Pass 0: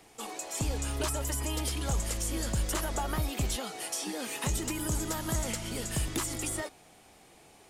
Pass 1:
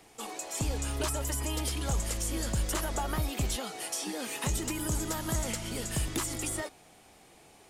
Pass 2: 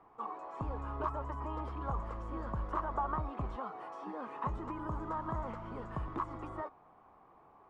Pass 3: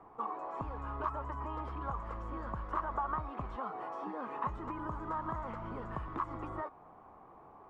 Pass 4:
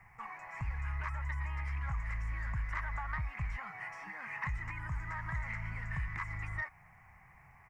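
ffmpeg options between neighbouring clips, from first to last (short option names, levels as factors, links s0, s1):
-af anull
-af "lowpass=f=1100:t=q:w=6.3,volume=0.422"
-filter_complex "[0:a]highshelf=f=2300:g=-10,acrossover=split=1100[s0][s1];[s0]acompressor=threshold=0.00501:ratio=6[s2];[s2][s1]amix=inputs=2:normalize=0,volume=2.11"
-af "firequalizer=gain_entry='entry(130,0);entry(270,-26);entry(450,-28);entry(800,-14);entry(1200,-15);entry(2000,14);entry(3400,-13);entry(5300,4)':delay=0.05:min_phase=1,asoftclip=type=tanh:threshold=0.0282,volume=2.24"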